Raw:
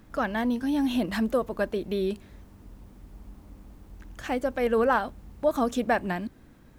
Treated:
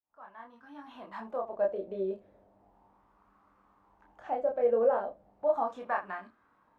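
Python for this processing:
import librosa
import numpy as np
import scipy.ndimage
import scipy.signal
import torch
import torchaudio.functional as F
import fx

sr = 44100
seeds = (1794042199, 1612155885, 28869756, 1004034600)

p1 = fx.fade_in_head(x, sr, length_s=1.61)
p2 = fx.low_shelf(p1, sr, hz=63.0, db=10.5)
p3 = p2 + fx.room_early_taps(p2, sr, ms=(21, 31, 75), db=(-5.5, -3.5, -16.0), dry=0)
p4 = fx.wah_lfo(p3, sr, hz=0.36, low_hz=550.0, high_hz=1200.0, q=3.9)
y = p4 * 10.0 ** (1.0 / 20.0)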